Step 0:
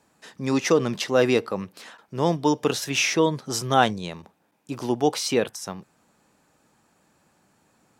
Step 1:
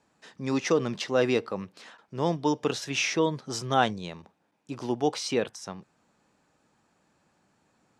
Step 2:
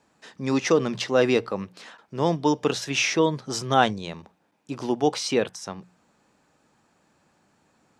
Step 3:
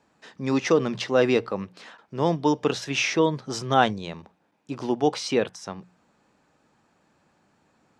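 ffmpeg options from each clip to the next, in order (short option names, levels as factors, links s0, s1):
-af "lowpass=7200,volume=0.596"
-af "bandreject=f=60:t=h:w=6,bandreject=f=120:t=h:w=6,bandreject=f=180:t=h:w=6,volume=1.58"
-af "highshelf=f=7700:g=-9.5"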